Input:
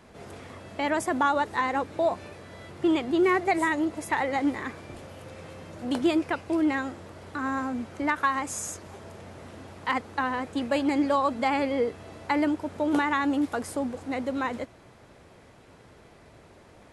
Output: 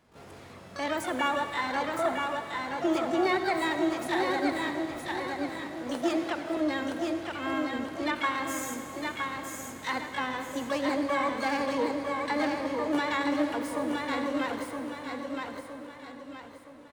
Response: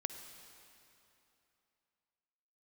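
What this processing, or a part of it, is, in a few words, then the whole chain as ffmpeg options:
shimmer-style reverb: -filter_complex "[0:a]agate=range=0.447:threshold=0.00355:ratio=16:detection=peak,asettb=1/sr,asplit=3[s0][s1][s2];[s0]atrim=end=5.634[s3];[s1]atrim=start=5.63:end=6.57,asetpts=PTS-STARTPTS,afade=t=in:d=0.004:c=qsin,afade=t=out:st=0.936:d=0.004:c=qsin,highpass=f=210:w=0.5412,highpass=f=210:w=1.3066[s4];[s2]atrim=start=6.566[s5];[s3][s4]acrossfade=d=0.004:c1=hsin:c2=qsin[s6];[s6][s5]acrossfade=d=0.004:c1=qsin:c2=hsin,aecho=1:1:967|1934|2901|3868|4835:0.631|0.252|0.101|0.0404|0.0162,asplit=2[s7][s8];[s8]asetrate=88200,aresample=44100,atempo=0.5,volume=0.501[s9];[s7][s9]amix=inputs=2:normalize=0[s10];[1:a]atrim=start_sample=2205[s11];[s10][s11]afir=irnorm=-1:irlink=0,volume=0.596"

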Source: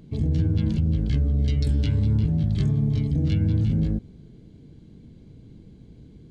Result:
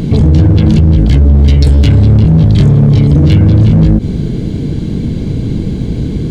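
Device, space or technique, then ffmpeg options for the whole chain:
loud club master: -af "acompressor=threshold=0.0501:ratio=2.5,asoftclip=type=hard:threshold=0.0631,alimiter=level_in=44.7:limit=0.891:release=50:level=0:latency=1,volume=0.891"

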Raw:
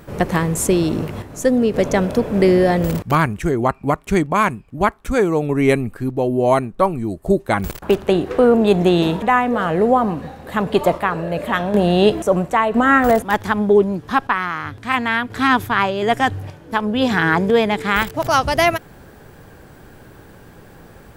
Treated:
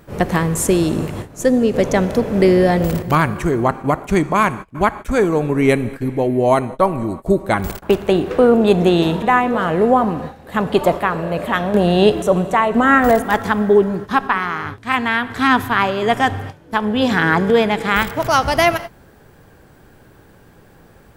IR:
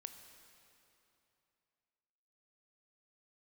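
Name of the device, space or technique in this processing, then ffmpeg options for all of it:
keyed gated reverb: -filter_complex "[0:a]asplit=3[s0][s1][s2];[1:a]atrim=start_sample=2205[s3];[s1][s3]afir=irnorm=-1:irlink=0[s4];[s2]apad=whole_len=933309[s5];[s4][s5]sidechaingate=range=0.0224:threshold=0.0316:ratio=16:detection=peak,volume=1.68[s6];[s0][s6]amix=inputs=2:normalize=0,volume=0.596"

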